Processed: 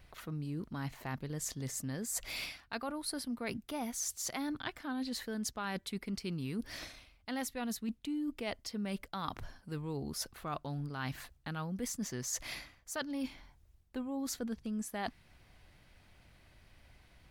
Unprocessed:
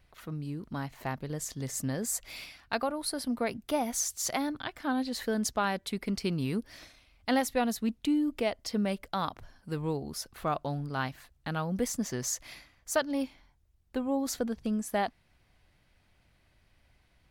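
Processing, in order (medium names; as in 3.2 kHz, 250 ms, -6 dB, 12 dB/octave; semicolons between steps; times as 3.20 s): dynamic bell 620 Hz, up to -6 dB, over -45 dBFS, Q 1.4; reverse; compression 6:1, threshold -41 dBFS, peak gain reduction 15.5 dB; reverse; trim +5 dB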